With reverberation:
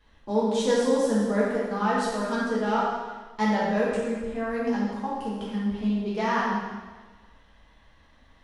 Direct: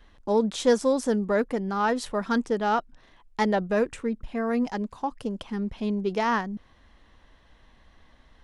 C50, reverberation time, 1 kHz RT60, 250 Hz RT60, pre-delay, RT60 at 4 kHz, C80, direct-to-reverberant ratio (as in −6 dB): −1.5 dB, 1.4 s, 1.4 s, 1.3 s, 4 ms, 1.3 s, 1.5 dB, −8.0 dB